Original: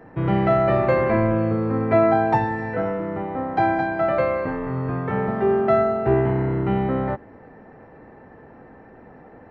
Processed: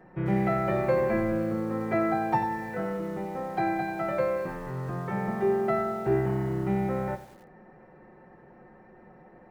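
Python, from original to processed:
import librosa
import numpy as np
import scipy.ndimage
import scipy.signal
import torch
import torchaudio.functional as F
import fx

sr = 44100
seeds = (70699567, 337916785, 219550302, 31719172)

y = x + 0.75 * np.pad(x, (int(5.5 * sr / 1000.0), 0))[:len(x)]
y = fx.echo_crushed(y, sr, ms=93, feedback_pct=55, bits=6, wet_db=-14.0)
y = y * librosa.db_to_amplitude(-8.5)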